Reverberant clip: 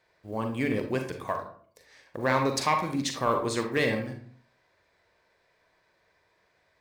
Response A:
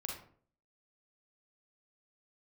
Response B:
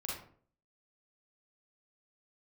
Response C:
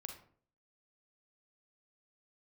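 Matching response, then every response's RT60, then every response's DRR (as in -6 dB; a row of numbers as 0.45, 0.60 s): C; 0.50, 0.50, 0.50 s; -0.5, -4.5, 4.0 dB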